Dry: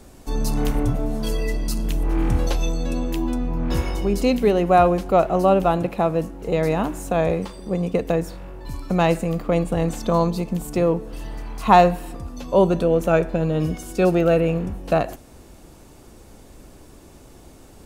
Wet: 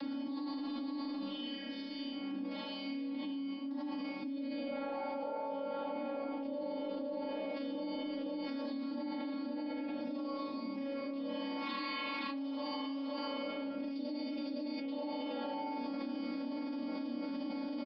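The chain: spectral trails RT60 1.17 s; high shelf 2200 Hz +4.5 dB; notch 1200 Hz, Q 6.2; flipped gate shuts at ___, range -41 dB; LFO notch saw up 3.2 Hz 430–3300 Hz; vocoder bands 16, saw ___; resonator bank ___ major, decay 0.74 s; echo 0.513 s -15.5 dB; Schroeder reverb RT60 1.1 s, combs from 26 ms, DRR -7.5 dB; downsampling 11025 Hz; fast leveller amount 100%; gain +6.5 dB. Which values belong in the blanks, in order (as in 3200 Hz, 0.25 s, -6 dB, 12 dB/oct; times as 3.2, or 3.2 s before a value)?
-15 dBFS, 276 Hz, G2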